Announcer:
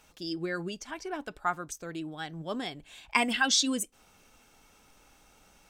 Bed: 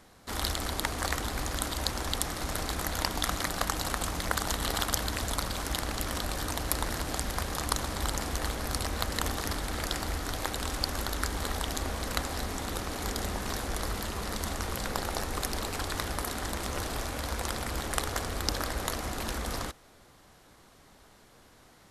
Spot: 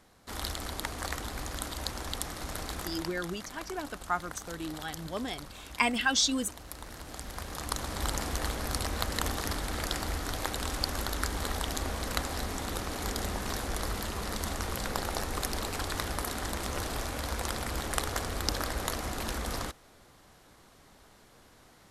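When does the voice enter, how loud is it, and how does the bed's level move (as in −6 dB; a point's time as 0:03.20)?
2.65 s, −1.0 dB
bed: 0:02.79 −4.5 dB
0:03.23 −14 dB
0:06.71 −14 dB
0:08.08 −0.5 dB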